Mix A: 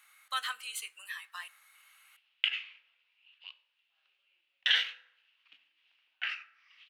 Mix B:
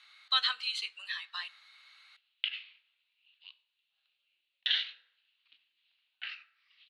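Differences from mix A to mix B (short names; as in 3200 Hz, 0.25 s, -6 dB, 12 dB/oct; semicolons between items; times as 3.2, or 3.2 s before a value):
background -10.0 dB; master: add synth low-pass 4100 Hz, resonance Q 5.3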